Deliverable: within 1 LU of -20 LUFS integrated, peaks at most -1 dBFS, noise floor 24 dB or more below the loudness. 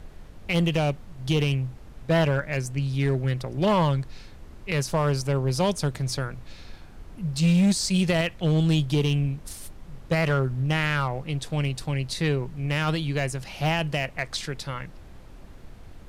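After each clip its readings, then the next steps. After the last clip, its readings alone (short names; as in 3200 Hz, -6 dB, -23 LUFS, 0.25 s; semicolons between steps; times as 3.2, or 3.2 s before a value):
clipped 1.0%; flat tops at -16.0 dBFS; noise floor -45 dBFS; noise floor target -50 dBFS; loudness -25.5 LUFS; peak -16.0 dBFS; loudness target -20.0 LUFS
-> clip repair -16 dBFS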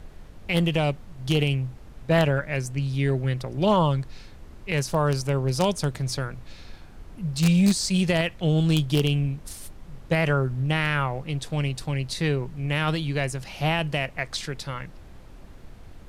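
clipped 0.0%; noise floor -45 dBFS; noise floor target -49 dBFS
-> noise print and reduce 6 dB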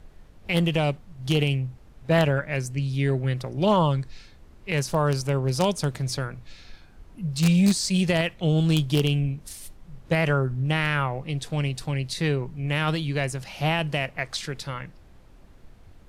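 noise floor -51 dBFS; loudness -25.0 LUFS; peak -7.0 dBFS; loudness target -20.0 LUFS
-> gain +5 dB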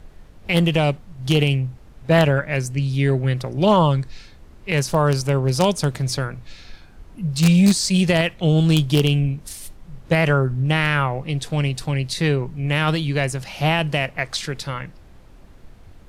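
loudness -20.0 LUFS; peak -2.0 dBFS; noise floor -46 dBFS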